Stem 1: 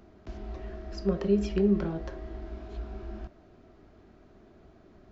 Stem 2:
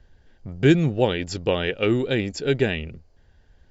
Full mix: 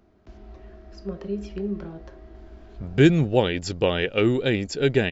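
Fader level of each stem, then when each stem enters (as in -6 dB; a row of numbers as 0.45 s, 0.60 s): -5.0 dB, +0.5 dB; 0.00 s, 2.35 s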